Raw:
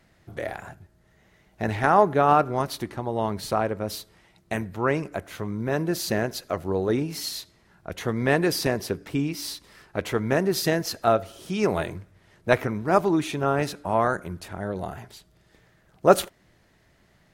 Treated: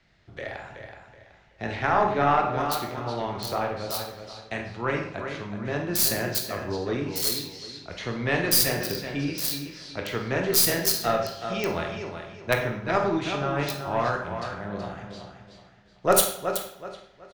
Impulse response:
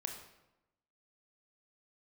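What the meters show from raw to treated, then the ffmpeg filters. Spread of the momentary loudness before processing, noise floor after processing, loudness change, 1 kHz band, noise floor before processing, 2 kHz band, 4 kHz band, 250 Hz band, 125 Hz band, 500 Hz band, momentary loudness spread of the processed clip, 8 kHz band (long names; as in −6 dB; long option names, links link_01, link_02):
15 LU, −57 dBFS, −0.5 dB, −2.0 dB, −62 dBFS, +0.5 dB, +4.5 dB, −4.0 dB, −2.5 dB, −3.5 dB, 17 LU, +8.0 dB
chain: -filter_complex "[0:a]lowshelf=frequency=76:gain=6.5,asplit=2[link_01][link_02];[link_02]adelay=49,volume=-12.5dB[link_03];[link_01][link_03]amix=inputs=2:normalize=0,aecho=1:1:375|750|1125|1500:0.398|0.123|0.0383|0.0119,acrossover=split=150|550|4800[link_04][link_05][link_06][link_07];[link_07]acrusher=bits=4:mix=0:aa=0.000001[link_08];[link_04][link_05][link_06][link_08]amix=inputs=4:normalize=0,crystalizer=i=5.5:c=0[link_09];[1:a]atrim=start_sample=2205,asetrate=57330,aresample=44100[link_10];[link_09][link_10]afir=irnorm=-1:irlink=0,aeval=exprs='0.794*(cos(1*acos(clip(val(0)/0.794,-1,1)))-cos(1*PI/2))+0.2*(cos(2*acos(clip(val(0)/0.794,-1,1)))-cos(2*PI/2))':channel_layout=same,volume=-2.5dB"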